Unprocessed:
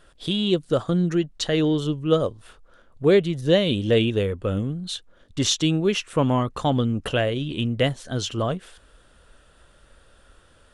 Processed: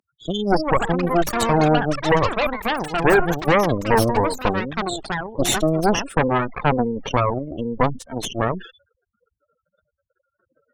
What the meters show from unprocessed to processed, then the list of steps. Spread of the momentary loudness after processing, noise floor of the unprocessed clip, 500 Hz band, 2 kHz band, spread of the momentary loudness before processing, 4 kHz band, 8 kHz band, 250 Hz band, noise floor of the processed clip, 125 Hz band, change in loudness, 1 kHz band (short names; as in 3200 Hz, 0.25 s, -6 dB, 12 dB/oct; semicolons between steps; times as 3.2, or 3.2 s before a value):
9 LU, -56 dBFS, +2.0 dB, +8.5 dB, 8 LU, -2.5 dB, +3.0 dB, +0.5 dB, -81 dBFS, 0.0 dB, +2.5 dB, +12.0 dB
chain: spectral gate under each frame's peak -10 dB strong; HPF 200 Hz 24 dB/oct; added harmonics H 8 -8 dB, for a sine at -6.5 dBFS; echoes that change speed 0.335 s, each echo +7 st, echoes 3, each echo -6 dB; sustainer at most 130 dB/s